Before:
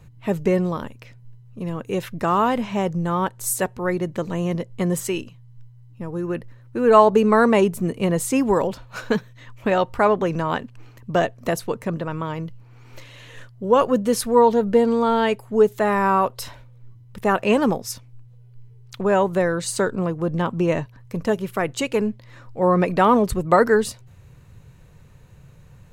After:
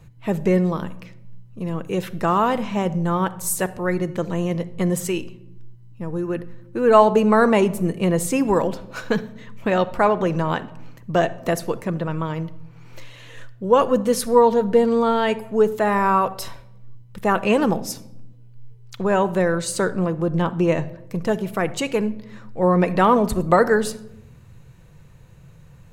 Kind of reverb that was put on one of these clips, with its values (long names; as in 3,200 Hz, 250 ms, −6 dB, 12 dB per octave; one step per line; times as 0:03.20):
rectangular room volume 2,600 cubic metres, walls furnished, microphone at 0.72 metres